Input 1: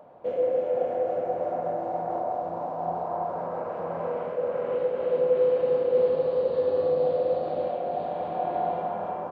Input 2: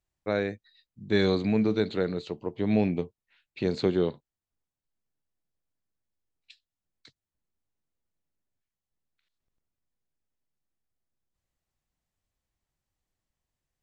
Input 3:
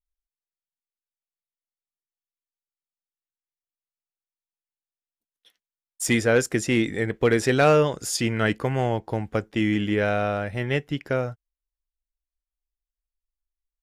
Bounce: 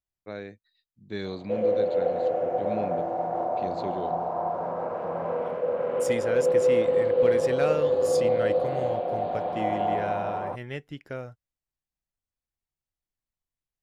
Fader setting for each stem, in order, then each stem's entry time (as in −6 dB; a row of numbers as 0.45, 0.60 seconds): +1.0, −10.0, −11.0 decibels; 1.25, 0.00, 0.00 seconds